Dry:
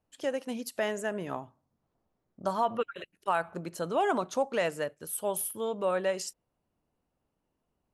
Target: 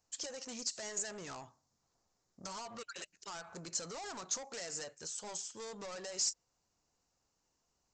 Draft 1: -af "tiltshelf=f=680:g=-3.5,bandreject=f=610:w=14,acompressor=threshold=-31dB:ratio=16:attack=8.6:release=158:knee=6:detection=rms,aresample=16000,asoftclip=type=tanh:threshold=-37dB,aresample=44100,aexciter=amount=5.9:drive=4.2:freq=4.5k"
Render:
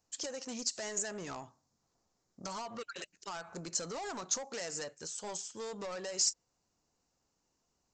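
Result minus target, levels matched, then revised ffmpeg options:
soft clip: distortion -3 dB; 250 Hz band +2.5 dB
-af "tiltshelf=f=680:g=-3.5,bandreject=f=610:w=14,acompressor=threshold=-31dB:ratio=16:attack=8.6:release=158:knee=6:detection=rms,equalizer=f=250:w=0.67:g=-4,aresample=16000,asoftclip=type=tanh:threshold=-43dB,aresample=44100,aexciter=amount=5.9:drive=4.2:freq=4.5k"

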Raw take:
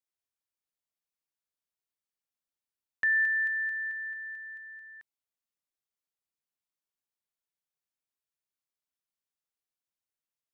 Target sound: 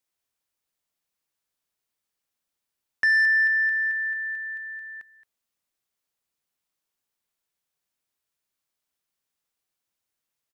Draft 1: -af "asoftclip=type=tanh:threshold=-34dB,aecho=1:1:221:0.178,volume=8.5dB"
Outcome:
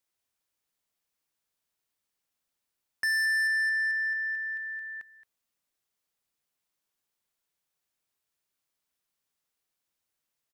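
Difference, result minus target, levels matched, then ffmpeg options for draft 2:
soft clip: distortion +11 dB
-af "asoftclip=type=tanh:threshold=-24dB,aecho=1:1:221:0.178,volume=8.5dB"

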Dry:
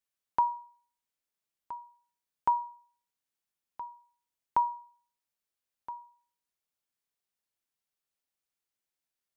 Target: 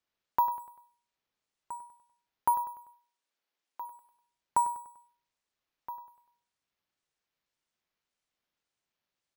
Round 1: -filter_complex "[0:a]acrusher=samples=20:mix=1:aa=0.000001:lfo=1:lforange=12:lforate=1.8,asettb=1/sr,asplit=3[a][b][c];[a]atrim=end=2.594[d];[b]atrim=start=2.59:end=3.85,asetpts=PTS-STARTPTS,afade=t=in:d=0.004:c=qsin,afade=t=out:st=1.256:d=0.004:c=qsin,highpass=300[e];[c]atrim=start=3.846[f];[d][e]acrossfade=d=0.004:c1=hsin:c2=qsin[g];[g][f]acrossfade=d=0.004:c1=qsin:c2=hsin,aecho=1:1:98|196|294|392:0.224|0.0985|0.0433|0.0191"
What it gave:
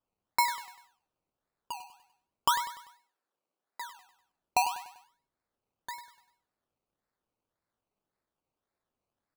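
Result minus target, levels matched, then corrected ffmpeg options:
decimation with a swept rate: distortion +24 dB
-filter_complex "[0:a]acrusher=samples=4:mix=1:aa=0.000001:lfo=1:lforange=2.4:lforate=1.8,asettb=1/sr,asplit=3[a][b][c];[a]atrim=end=2.594[d];[b]atrim=start=2.59:end=3.85,asetpts=PTS-STARTPTS,afade=t=in:d=0.004:c=qsin,afade=t=out:st=1.256:d=0.004:c=qsin,highpass=300[e];[c]atrim=start=3.846[f];[d][e]acrossfade=d=0.004:c1=hsin:c2=qsin[g];[g][f]acrossfade=d=0.004:c1=qsin:c2=hsin,aecho=1:1:98|196|294|392:0.224|0.0985|0.0433|0.0191"

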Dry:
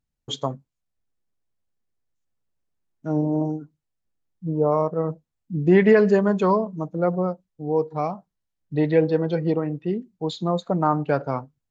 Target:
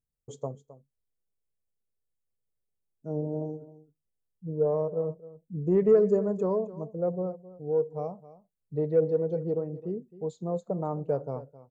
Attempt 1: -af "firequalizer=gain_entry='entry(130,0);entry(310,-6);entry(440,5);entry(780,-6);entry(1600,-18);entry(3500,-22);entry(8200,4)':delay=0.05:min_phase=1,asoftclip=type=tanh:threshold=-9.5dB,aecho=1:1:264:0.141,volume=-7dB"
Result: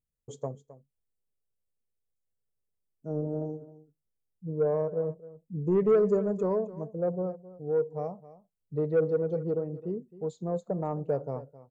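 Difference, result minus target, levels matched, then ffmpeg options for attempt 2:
soft clip: distortion +11 dB
-af "firequalizer=gain_entry='entry(130,0);entry(310,-6);entry(440,5);entry(780,-6);entry(1600,-18);entry(3500,-22);entry(8200,4)':delay=0.05:min_phase=1,asoftclip=type=tanh:threshold=-2dB,aecho=1:1:264:0.141,volume=-7dB"

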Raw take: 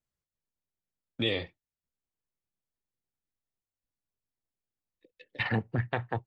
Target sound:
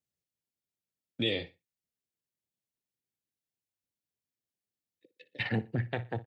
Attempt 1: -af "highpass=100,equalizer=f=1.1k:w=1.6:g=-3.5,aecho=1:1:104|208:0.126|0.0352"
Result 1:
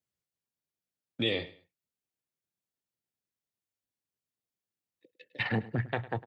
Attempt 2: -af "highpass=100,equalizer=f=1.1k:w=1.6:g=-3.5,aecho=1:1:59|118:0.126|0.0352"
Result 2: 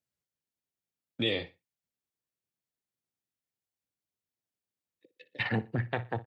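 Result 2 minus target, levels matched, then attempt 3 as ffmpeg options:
1000 Hz band +3.5 dB
-af "highpass=100,equalizer=f=1.1k:w=1.6:g=-12,aecho=1:1:59|118:0.126|0.0352"

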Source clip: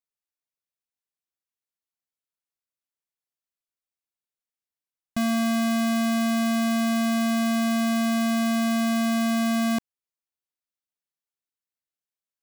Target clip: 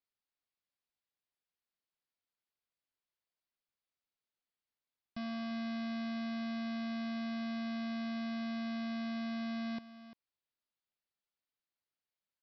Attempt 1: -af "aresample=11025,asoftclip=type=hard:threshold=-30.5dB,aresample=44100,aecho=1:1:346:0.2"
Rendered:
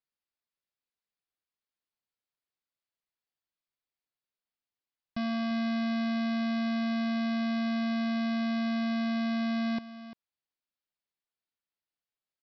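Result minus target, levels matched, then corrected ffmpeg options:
hard clip: distortion -4 dB
-af "aresample=11025,asoftclip=type=hard:threshold=-39dB,aresample=44100,aecho=1:1:346:0.2"

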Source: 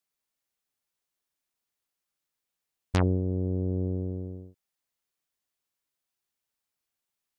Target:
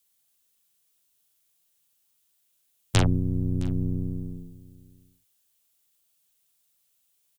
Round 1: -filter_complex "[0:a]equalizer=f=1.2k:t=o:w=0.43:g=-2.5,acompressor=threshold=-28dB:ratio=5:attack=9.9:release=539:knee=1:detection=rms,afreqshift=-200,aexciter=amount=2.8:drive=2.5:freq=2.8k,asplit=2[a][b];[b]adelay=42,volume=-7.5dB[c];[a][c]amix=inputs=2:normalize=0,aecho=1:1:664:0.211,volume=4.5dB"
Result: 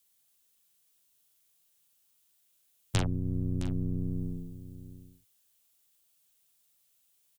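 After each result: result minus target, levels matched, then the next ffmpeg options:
compressor: peak gain reduction +9 dB; echo-to-direct +7 dB
-filter_complex "[0:a]equalizer=f=1.2k:t=o:w=0.43:g=-2.5,afreqshift=-200,aexciter=amount=2.8:drive=2.5:freq=2.8k,asplit=2[a][b];[b]adelay=42,volume=-7.5dB[c];[a][c]amix=inputs=2:normalize=0,aecho=1:1:664:0.211,volume=4.5dB"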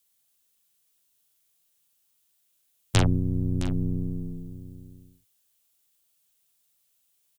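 echo-to-direct +7 dB
-filter_complex "[0:a]equalizer=f=1.2k:t=o:w=0.43:g=-2.5,afreqshift=-200,aexciter=amount=2.8:drive=2.5:freq=2.8k,asplit=2[a][b];[b]adelay=42,volume=-7.5dB[c];[a][c]amix=inputs=2:normalize=0,aecho=1:1:664:0.0944,volume=4.5dB"

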